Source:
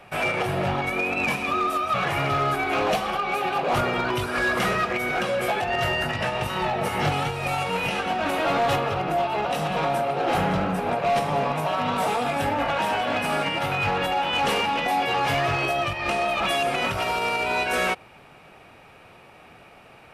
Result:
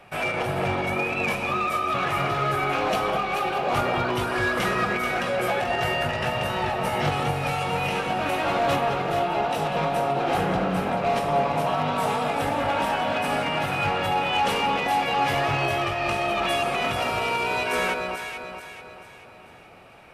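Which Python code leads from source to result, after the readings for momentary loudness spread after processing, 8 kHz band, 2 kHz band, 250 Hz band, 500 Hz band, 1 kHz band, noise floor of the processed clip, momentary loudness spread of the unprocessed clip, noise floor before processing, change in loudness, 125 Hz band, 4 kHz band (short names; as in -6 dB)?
3 LU, -1.0 dB, -1.0 dB, 0.0 dB, 0.0 dB, 0.0 dB, -47 dBFS, 3 LU, -49 dBFS, -0.5 dB, 0.0 dB, -1.0 dB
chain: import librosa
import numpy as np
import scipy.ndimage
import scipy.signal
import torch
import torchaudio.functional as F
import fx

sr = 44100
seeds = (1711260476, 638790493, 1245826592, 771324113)

y = fx.echo_alternate(x, sr, ms=218, hz=1400.0, feedback_pct=65, wet_db=-3)
y = F.gain(torch.from_numpy(y), -2.0).numpy()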